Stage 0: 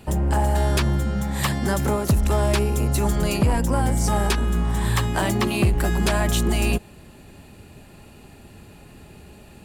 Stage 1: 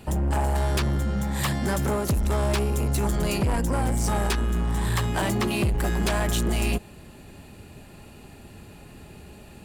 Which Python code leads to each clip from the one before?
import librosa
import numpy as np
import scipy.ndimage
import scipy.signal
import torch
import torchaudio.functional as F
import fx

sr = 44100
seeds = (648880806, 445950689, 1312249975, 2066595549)

y = 10.0 ** (-19.0 / 20.0) * np.tanh(x / 10.0 ** (-19.0 / 20.0))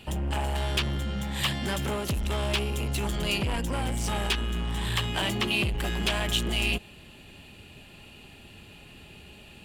y = fx.peak_eq(x, sr, hz=3000.0, db=14.0, octaves=0.88)
y = F.gain(torch.from_numpy(y), -5.5).numpy()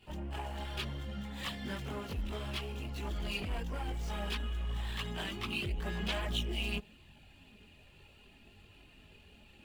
y = scipy.ndimage.median_filter(x, 5, mode='constant')
y = fx.chorus_voices(y, sr, voices=4, hz=0.61, base_ms=21, depth_ms=2.5, mix_pct=65)
y = F.gain(torch.from_numpy(y), -7.5).numpy()